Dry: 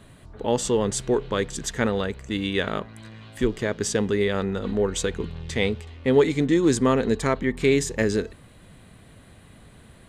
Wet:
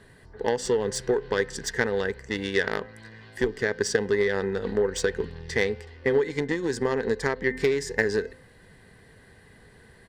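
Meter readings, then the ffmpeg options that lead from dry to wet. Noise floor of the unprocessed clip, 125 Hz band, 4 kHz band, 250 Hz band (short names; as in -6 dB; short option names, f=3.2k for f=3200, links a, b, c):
-50 dBFS, -7.0 dB, -3.5 dB, -7.5 dB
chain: -af "bandreject=f=258.5:t=h:w=4,bandreject=f=517:t=h:w=4,bandreject=f=775.5:t=h:w=4,bandreject=f=1.034k:t=h:w=4,bandreject=f=1.2925k:t=h:w=4,bandreject=f=1.551k:t=h:w=4,bandreject=f=1.8095k:t=h:w=4,bandreject=f=2.068k:t=h:w=4,bandreject=f=2.3265k:t=h:w=4,bandreject=f=2.585k:t=h:w=4,bandreject=f=2.8435k:t=h:w=4,bandreject=f=3.102k:t=h:w=4,aresample=32000,aresample=44100,acompressor=threshold=-22dB:ratio=12,aeval=exprs='0.188*(cos(1*acos(clip(val(0)/0.188,-1,1)))-cos(1*PI/2))+0.0299*(cos(3*acos(clip(val(0)/0.188,-1,1)))-cos(3*PI/2))':c=same,superequalizer=7b=2.51:9b=1.58:11b=3.16:14b=2.24"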